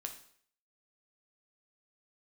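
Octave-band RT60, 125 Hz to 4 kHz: 0.55 s, 0.55 s, 0.60 s, 0.55 s, 0.60 s, 0.55 s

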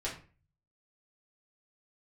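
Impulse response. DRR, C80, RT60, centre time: -6.5 dB, 13.0 dB, 0.40 s, 24 ms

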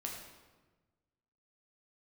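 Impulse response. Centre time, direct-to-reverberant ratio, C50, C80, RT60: 50 ms, -1.5 dB, 3.0 dB, 5.0 dB, 1.3 s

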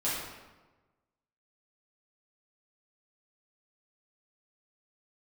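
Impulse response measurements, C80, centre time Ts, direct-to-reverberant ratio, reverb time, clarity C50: 2.5 dB, 79 ms, -9.5 dB, 1.2 s, -0.5 dB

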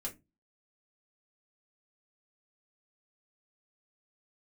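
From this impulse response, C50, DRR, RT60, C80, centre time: 16.0 dB, -2.5 dB, no single decay rate, 25.5 dB, 13 ms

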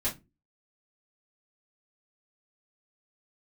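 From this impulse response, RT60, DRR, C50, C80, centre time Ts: no single decay rate, -9.0 dB, 13.5 dB, 23.0 dB, 19 ms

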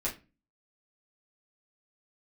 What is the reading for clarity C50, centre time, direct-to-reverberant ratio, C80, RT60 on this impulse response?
12.0 dB, 18 ms, -7.5 dB, 19.5 dB, 0.30 s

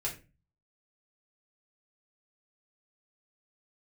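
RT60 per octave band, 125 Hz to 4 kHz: 0.60 s, 0.45 s, 0.35 s, 0.25 s, 0.30 s, 0.25 s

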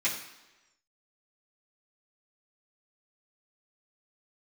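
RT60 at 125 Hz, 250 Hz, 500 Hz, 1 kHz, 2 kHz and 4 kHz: 0.85 s, 1.0 s, 1.1 s, 1.1 s, 1.0 s, 1.0 s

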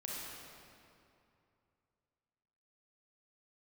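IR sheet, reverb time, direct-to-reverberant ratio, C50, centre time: 2.7 s, -5.0 dB, -3.5 dB, 161 ms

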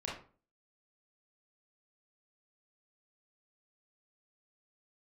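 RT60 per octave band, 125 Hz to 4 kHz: 0.50 s, 0.50 s, 0.40 s, 0.40 s, 0.30 s, 0.25 s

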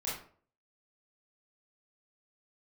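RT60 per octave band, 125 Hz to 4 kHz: 0.55 s, 0.50 s, 0.50 s, 0.45 s, 0.40 s, 0.30 s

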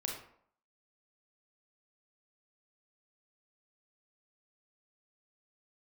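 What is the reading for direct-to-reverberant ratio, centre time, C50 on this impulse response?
0.0 dB, 36 ms, 4.0 dB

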